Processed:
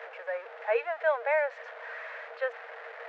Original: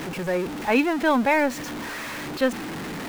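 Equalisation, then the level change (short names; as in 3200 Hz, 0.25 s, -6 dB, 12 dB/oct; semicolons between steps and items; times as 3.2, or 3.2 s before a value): rippled Chebyshev high-pass 450 Hz, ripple 9 dB; tape spacing loss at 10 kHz 41 dB; +2.5 dB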